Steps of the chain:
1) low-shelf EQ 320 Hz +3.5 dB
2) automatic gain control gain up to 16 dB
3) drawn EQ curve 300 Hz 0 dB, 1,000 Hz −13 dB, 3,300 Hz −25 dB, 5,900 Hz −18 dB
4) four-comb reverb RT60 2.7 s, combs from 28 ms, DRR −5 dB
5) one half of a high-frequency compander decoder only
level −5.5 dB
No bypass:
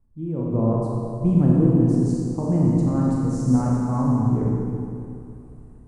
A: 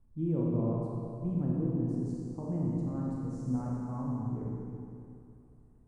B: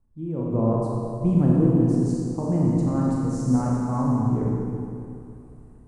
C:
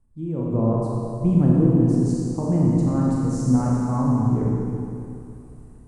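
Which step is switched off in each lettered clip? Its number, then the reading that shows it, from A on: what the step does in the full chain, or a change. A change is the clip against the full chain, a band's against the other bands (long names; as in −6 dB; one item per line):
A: 2, change in integrated loudness −13.0 LU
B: 1, 125 Hz band −2.0 dB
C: 5, 8 kHz band +2.5 dB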